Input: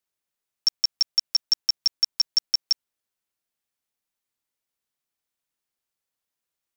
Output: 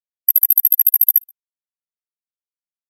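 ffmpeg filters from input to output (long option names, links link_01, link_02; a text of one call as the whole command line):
ffmpeg -i in.wav -filter_complex "[0:a]afftfilt=real='real(if(between(b,1,1008),(2*floor((b-1)/24)+1)*24-b,b),0)':imag='imag(if(between(b,1,1008),(2*floor((b-1)/24)+1)*24-b,b),0)*if(between(b,1,1008),-1,1)':win_size=2048:overlap=0.75,afftdn=noise_reduction=29:noise_floor=-42,asuperstop=centerf=1600:order=20:qfactor=1.3,aemphasis=mode=production:type=cd,asplit=2[link_01][link_02];[link_02]adelay=37,volume=-3dB[link_03];[link_01][link_03]amix=inputs=2:normalize=0,asplit=2[link_04][link_05];[link_05]adelay=303.2,volume=-27dB,highshelf=frequency=4000:gain=-6.82[link_06];[link_04][link_06]amix=inputs=2:normalize=0,asetrate=103194,aresample=44100,volume=5dB" out.wav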